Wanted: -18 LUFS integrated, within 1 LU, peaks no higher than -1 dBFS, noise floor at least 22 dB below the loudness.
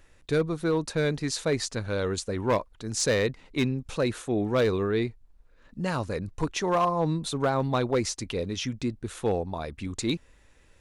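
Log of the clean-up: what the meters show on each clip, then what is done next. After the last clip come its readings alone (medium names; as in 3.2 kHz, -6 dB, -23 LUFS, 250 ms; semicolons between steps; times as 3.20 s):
clipped samples 0.6%; clipping level -17.5 dBFS; loudness -28.5 LUFS; peak level -17.5 dBFS; loudness target -18.0 LUFS
-> clip repair -17.5 dBFS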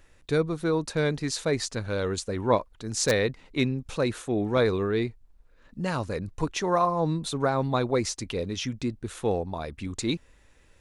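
clipped samples 0.0%; loudness -28.0 LUFS; peak level -8.5 dBFS; loudness target -18.0 LUFS
-> trim +10 dB; peak limiter -1 dBFS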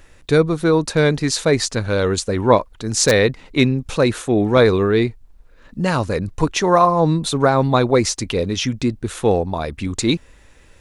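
loudness -18.0 LUFS; peak level -1.0 dBFS; noise floor -49 dBFS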